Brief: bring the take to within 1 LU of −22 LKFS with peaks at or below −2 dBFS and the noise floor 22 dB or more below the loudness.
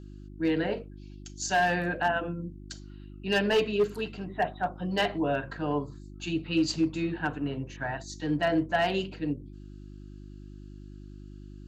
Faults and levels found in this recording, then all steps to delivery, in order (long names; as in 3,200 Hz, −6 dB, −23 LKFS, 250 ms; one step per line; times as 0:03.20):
share of clipped samples 0.3%; peaks flattened at −18.0 dBFS; mains hum 50 Hz; hum harmonics up to 350 Hz; level of the hum −42 dBFS; integrated loudness −29.5 LKFS; sample peak −18.0 dBFS; target loudness −22.0 LKFS
→ clipped peaks rebuilt −18 dBFS
hum removal 50 Hz, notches 7
level +7.5 dB